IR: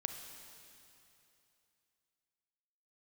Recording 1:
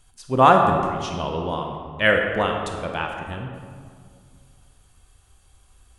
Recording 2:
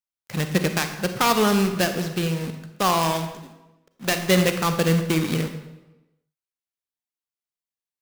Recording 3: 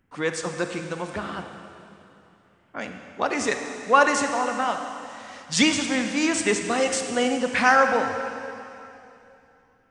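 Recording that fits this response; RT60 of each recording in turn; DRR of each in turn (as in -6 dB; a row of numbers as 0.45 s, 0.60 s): 3; 2.0 s, 1.0 s, 2.9 s; 2.0 dB, 7.0 dB, 5.5 dB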